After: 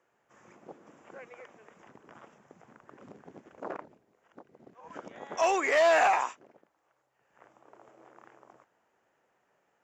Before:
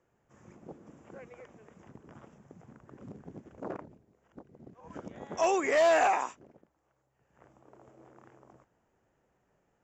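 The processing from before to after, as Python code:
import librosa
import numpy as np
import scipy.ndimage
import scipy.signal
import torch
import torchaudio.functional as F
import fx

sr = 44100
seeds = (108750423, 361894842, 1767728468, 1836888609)

p1 = fx.highpass(x, sr, hz=970.0, slope=6)
p2 = fx.high_shelf(p1, sr, hz=5900.0, db=-10.0)
p3 = np.clip(p2, -10.0 ** (-33.5 / 20.0), 10.0 ** (-33.5 / 20.0))
p4 = p2 + (p3 * 10.0 ** (-9.0 / 20.0))
y = p4 * 10.0 ** (4.5 / 20.0)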